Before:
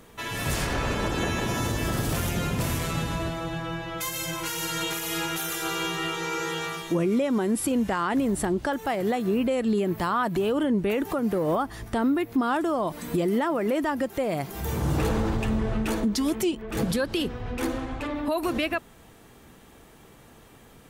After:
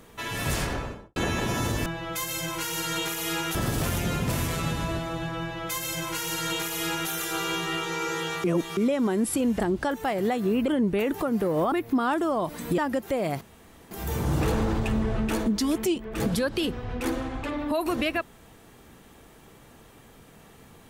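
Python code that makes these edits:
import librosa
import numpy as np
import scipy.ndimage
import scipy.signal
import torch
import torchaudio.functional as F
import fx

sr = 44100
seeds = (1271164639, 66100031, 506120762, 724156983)

y = fx.studio_fade_out(x, sr, start_s=0.55, length_s=0.61)
y = fx.edit(y, sr, fx.duplicate(start_s=3.71, length_s=1.69, to_s=1.86),
    fx.reverse_span(start_s=6.75, length_s=0.33),
    fx.cut(start_s=7.91, length_s=0.51),
    fx.cut(start_s=9.5, length_s=1.09),
    fx.cut(start_s=11.63, length_s=0.52),
    fx.cut(start_s=13.21, length_s=0.64),
    fx.insert_room_tone(at_s=14.48, length_s=0.5), tone=tone)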